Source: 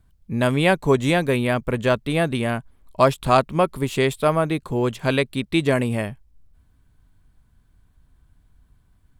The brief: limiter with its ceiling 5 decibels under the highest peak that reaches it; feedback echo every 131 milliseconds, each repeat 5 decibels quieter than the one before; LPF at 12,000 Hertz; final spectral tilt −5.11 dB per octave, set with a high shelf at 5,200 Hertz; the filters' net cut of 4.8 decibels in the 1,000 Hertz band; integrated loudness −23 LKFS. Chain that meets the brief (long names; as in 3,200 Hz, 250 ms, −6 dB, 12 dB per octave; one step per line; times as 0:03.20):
low-pass filter 12,000 Hz
parametric band 1,000 Hz −7 dB
high-shelf EQ 5,200 Hz +7.5 dB
brickwall limiter −10.5 dBFS
repeating echo 131 ms, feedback 56%, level −5 dB
level −0.5 dB